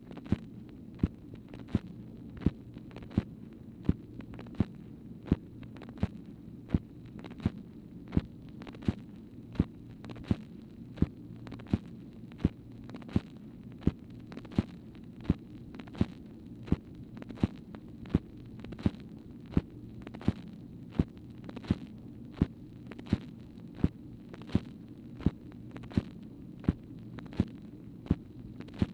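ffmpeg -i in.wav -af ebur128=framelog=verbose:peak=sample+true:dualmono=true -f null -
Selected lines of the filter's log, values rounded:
Integrated loudness:
  I:         -34.1 LUFS
  Threshold: -45.0 LUFS
Loudness range:
  LRA:         1.4 LU
  Threshold: -54.9 LUFS
  LRA low:   -35.5 LUFS
  LRA high:  -34.1 LUFS
Sample peak:
  Peak:      -10.7 dBFS
True peak:
  Peak:      -10.7 dBFS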